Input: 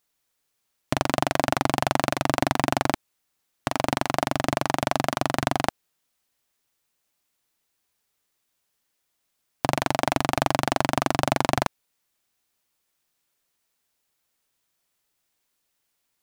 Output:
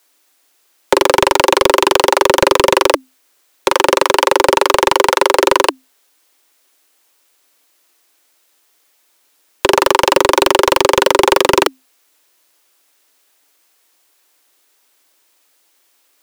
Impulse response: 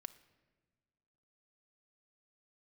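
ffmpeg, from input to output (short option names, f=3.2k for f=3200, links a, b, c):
-af "afreqshift=260,aeval=exprs='0.596*sin(PI/2*3.16*val(0)/0.596)':c=same,volume=3dB"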